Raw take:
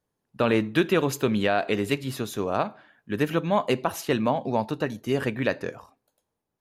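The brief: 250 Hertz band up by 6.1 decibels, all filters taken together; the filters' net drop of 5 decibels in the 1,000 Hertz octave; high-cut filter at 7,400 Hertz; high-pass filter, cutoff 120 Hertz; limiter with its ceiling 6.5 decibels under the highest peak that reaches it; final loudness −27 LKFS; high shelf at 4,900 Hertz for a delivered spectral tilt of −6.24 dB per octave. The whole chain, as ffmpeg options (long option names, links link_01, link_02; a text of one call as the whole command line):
ffmpeg -i in.wav -af "highpass=120,lowpass=7400,equalizer=frequency=250:width_type=o:gain=8.5,equalizer=frequency=1000:width_type=o:gain=-7.5,highshelf=frequency=4900:gain=-5,volume=-1.5dB,alimiter=limit=-15dB:level=0:latency=1" out.wav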